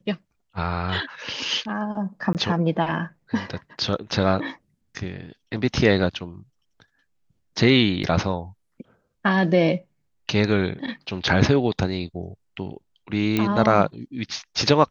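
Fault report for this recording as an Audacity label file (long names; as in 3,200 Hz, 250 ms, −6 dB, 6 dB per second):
2.330000	2.350000	drop-out 18 ms
8.030000	8.040000	drop-out 6.9 ms
13.370000	13.370000	click −9 dBFS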